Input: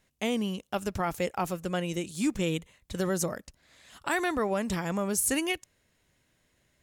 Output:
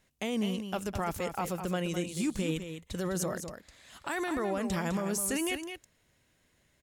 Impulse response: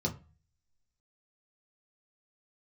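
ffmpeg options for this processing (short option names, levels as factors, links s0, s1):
-filter_complex "[0:a]alimiter=limit=0.0708:level=0:latency=1:release=20,asplit=2[s0][s1];[s1]aecho=0:1:206:0.376[s2];[s0][s2]amix=inputs=2:normalize=0"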